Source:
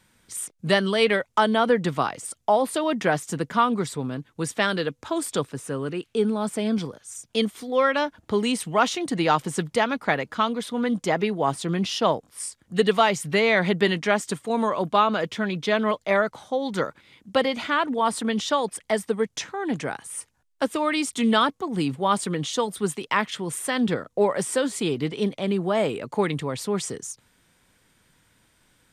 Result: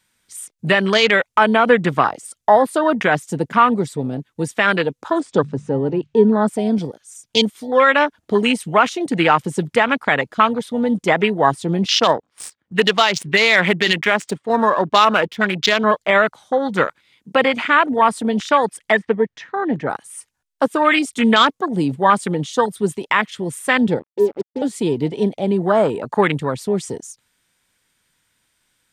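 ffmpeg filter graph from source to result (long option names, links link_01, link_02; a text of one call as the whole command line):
ffmpeg -i in.wav -filter_complex "[0:a]asettb=1/sr,asplit=3[link_01][link_02][link_03];[link_01]atrim=end=5.204[link_04];[link_02]atrim=start=5.2:end=6.48,asetpts=PTS-STARTPTS,afade=type=in:duration=0.004:curve=qsin,afade=type=out:start_time=1.276:duration=0.004:curve=qsin,lowpass=frequency=7000:width=0.5412,lowpass=frequency=7000:width=1.3066,tiltshelf=frequency=1200:gain=4,bandreject=frequency=73.63:width_type=h:width=4,bandreject=frequency=147.26:width_type=h:width=4[link_05];[link_03]atrim=start=6.476[link_06];[link_04][link_05]acrossfade=duration=0.004:curve1=hsin:curve2=qsin[link_07];[link_07][link_06]acrossfade=duration=0.004:curve1=qsin:curve2=hsin,asettb=1/sr,asplit=3[link_08][link_09][link_10];[link_08]atrim=end=12.014[link_11];[link_09]atrim=start=12.01:end=15.84,asetpts=PTS-STARTPTS,afade=type=in:duration=0.004:curve=qsin,afade=type=out:start_time=3.826:duration=0.004:curve=qsin,highpass=frequency=150:poles=1,highshelf=frequency=3700:gain=8.5,adynamicsmooth=sensitivity=4:basefreq=1900[link_12];[link_10]atrim=start=15.836[link_13];[link_11][link_12]acrossfade=duration=0.004:curve1=hsin:curve2=qsin[link_14];[link_14][link_13]acrossfade=duration=0.004:curve1=qsin:curve2=hsin,asettb=1/sr,asplit=3[link_15][link_16][link_17];[link_15]atrim=end=18.924[link_18];[link_16]atrim=start=18.92:end=19.9,asetpts=PTS-STARTPTS,afade=type=in:duration=0.004:curve=qsin,afade=type=out:start_time=0.976:duration=0.004:curve=qsin,lowpass=2900,equalizer=frequency=1800:width=5.6:gain=9.5[link_19];[link_17]atrim=start=19.896[link_20];[link_18][link_19]acrossfade=duration=0.004:curve1=hsin:curve2=qsin[link_21];[link_21][link_20]acrossfade=duration=0.004:curve1=qsin:curve2=hsin,asettb=1/sr,asplit=3[link_22][link_23][link_24];[link_22]atrim=end=23.994[link_25];[link_23]atrim=start=23.99:end=24.62,asetpts=PTS-STARTPTS,afade=type=in:duration=0.004:curve=qsin,afade=type=out:start_time=0.626:duration=0.004:curve=qsin,asuperpass=centerf=310:order=8:qfactor=1.4,acrusher=bits=5:mix=0:aa=0.5[link_26];[link_24]atrim=start=24.616[link_27];[link_25][link_26]acrossfade=duration=0.004:curve1=hsin:curve2=qsin[link_28];[link_28][link_27]acrossfade=duration=0.004:curve1=qsin:curve2=hsin,afwtdn=0.0316,tiltshelf=frequency=1100:gain=-5,alimiter=level_in=12dB:limit=-1dB:release=50:level=0:latency=1,volume=-1.5dB" out.wav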